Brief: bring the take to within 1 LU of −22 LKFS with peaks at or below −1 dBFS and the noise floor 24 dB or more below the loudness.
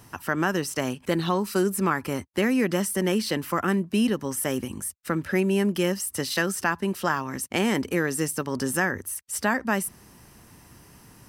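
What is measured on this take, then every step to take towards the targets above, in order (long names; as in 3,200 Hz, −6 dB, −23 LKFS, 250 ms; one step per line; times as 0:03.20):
integrated loudness −26.0 LKFS; sample peak −9.0 dBFS; target loudness −22.0 LKFS
→ level +4 dB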